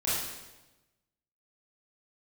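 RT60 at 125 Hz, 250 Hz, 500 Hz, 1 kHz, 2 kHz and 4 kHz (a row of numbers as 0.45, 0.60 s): 1.3, 1.2, 1.1, 1.0, 0.95, 0.95 s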